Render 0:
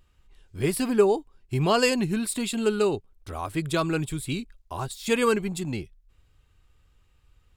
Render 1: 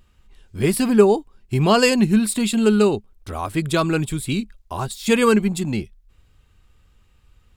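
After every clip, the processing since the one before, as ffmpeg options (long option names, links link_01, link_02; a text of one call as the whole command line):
ffmpeg -i in.wav -af "equalizer=frequency=210:width_type=o:width=0.22:gain=8,volume=5.5dB" out.wav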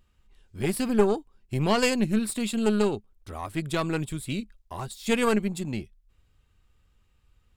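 ffmpeg -i in.wav -af "aeval=exprs='(tanh(2.24*val(0)+0.75)-tanh(0.75))/2.24':channel_layout=same,volume=-4dB" out.wav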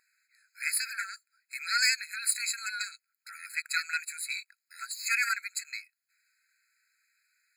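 ffmpeg -i in.wav -af "aeval=exprs='0.422*sin(PI/2*1.58*val(0)/0.422)':channel_layout=same,afftfilt=real='re*eq(mod(floor(b*sr/1024/1300),2),1)':imag='im*eq(mod(floor(b*sr/1024/1300),2),1)':win_size=1024:overlap=0.75" out.wav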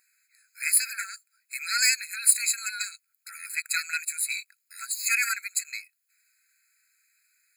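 ffmpeg -i in.wav -af "aexciter=amount=1.8:drive=5:freq=2500" out.wav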